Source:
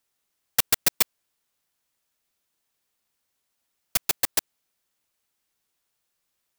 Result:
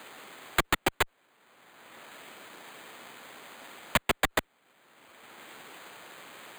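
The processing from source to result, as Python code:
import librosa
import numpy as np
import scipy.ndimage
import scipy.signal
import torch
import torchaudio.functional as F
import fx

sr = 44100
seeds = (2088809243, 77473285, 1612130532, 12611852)

p1 = scipy.signal.sosfilt(scipy.signal.butter(2, 220.0, 'highpass', fs=sr, output='sos'), x)
p2 = fx.cheby_harmonics(p1, sr, harmonics=(3, 5, 6, 7), levels_db=(-6, -16, -39, -6), full_scale_db=-3.5)
p3 = fx.spec_gate(p2, sr, threshold_db=-30, keep='strong')
p4 = 10.0 ** (-16.0 / 20.0) * (np.abs((p3 / 10.0 ** (-16.0 / 20.0) + 3.0) % 4.0 - 2.0) - 1.0)
p5 = p3 + (p4 * librosa.db_to_amplitude(-5.0))
p6 = np.repeat(scipy.signal.resample_poly(p5, 1, 8), 8)[:len(p5)]
p7 = fx.band_squash(p6, sr, depth_pct=70)
y = p7 * librosa.db_to_amplitude(4.0)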